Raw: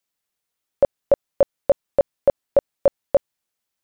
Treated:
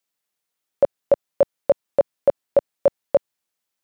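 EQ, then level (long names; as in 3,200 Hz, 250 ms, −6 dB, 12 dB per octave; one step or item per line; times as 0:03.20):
high-pass filter 130 Hz 6 dB per octave
0.0 dB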